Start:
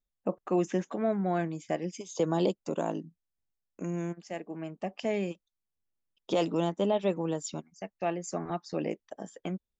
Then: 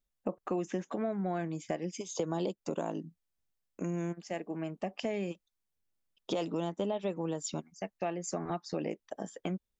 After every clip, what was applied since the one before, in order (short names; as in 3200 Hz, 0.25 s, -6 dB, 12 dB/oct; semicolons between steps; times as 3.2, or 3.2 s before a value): compressor 4:1, threshold -33 dBFS, peak gain reduction 9.5 dB; gain +2 dB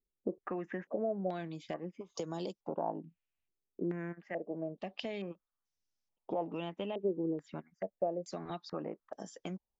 stepped low-pass 2.3 Hz 390–5700 Hz; gain -6 dB